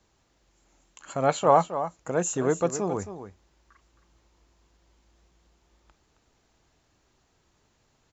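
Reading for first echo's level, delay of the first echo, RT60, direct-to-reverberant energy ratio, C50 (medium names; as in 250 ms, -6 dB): -11.0 dB, 268 ms, no reverb, no reverb, no reverb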